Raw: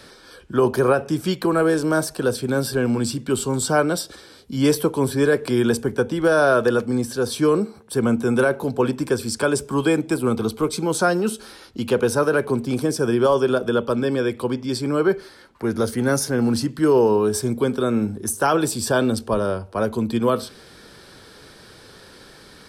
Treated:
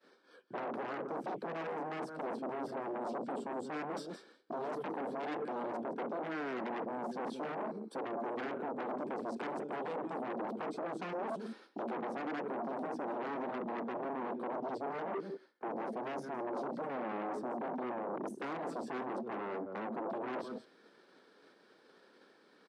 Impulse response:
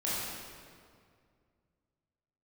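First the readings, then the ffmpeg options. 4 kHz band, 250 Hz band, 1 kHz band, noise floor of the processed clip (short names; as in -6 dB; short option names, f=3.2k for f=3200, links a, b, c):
-25.0 dB, -20.0 dB, -12.0 dB, -65 dBFS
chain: -filter_complex "[0:a]agate=range=-33dB:threshold=-35dB:ratio=3:detection=peak,afwtdn=0.0562,afftfilt=real='re*lt(hypot(re,im),0.794)':imag='im*lt(hypot(re,im),0.794)':win_size=1024:overlap=0.75,areverse,acompressor=threshold=-32dB:ratio=20,areverse,highshelf=f=3k:g=-8.5,aecho=1:1:167:0.133,asoftclip=type=tanh:threshold=-35.5dB,lowpass=10k,acrossover=split=300[a][b];[b]acompressor=threshold=-57dB:ratio=3[c];[a][c]amix=inputs=2:normalize=0,highshelf=f=6.4k:g=-10,aeval=exprs='0.02*sin(PI/2*3.98*val(0)/0.02)':c=same,highpass=f=230:w=0.5412,highpass=f=230:w=1.3066"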